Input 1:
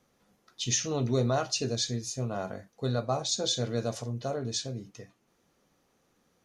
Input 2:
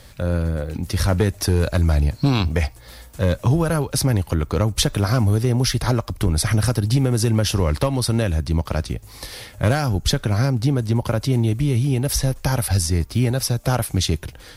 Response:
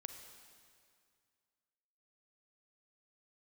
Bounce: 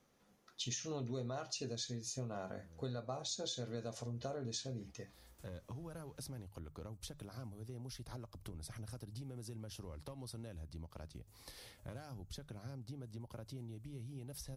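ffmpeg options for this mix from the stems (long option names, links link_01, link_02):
-filter_complex "[0:a]volume=-3.5dB,asplit=2[link_01][link_02];[1:a]acompressor=threshold=-27dB:ratio=4,bandreject=frequency=50:width_type=h:width=6,bandreject=frequency=100:width_type=h:width=6,bandreject=frequency=150:width_type=h:width=6,adynamicequalizer=threshold=0.00251:dfrequency=1900:dqfactor=1.1:tfrequency=1900:tqfactor=1.1:attack=5:release=100:ratio=0.375:range=2.5:mode=cutabove:tftype=bell,adelay=2250,volume=-19dB[link_03];[link_02]apad=whole_len=741706[link_04];[link_03][link_04]sidechaincompress=threshold=-52dB:ratio=8:attack=31:release=401[link_05];[link_01][link_05]amix=inputs=2:normalize=0,acompressor=threshold=-39dB:ratio=6"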